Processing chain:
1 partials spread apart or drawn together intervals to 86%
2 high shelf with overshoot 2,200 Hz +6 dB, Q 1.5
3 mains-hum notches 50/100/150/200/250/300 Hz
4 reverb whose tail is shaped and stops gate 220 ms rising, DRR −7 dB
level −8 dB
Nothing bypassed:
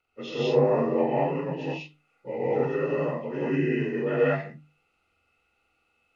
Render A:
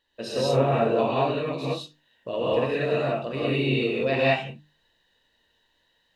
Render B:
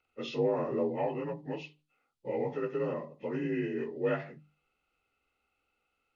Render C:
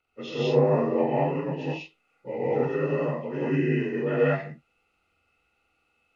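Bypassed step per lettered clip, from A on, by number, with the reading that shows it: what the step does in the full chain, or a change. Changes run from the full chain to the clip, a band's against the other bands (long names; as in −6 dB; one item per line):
1, 4 kHz band +6.5 dB
4, change in momentary loudness spread −3 LU
3, 125 Hz band +3.0 dB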